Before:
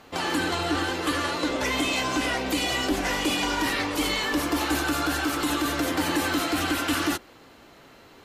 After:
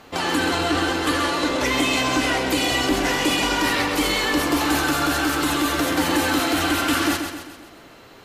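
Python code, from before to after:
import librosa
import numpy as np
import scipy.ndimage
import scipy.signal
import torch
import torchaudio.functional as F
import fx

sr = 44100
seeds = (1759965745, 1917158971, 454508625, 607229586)

y = fx.echo_feedback(x, sr, ms=131, feedback_pct=49, wet_db=-7)
y = y * librosa.db_to_amplitude(4.0)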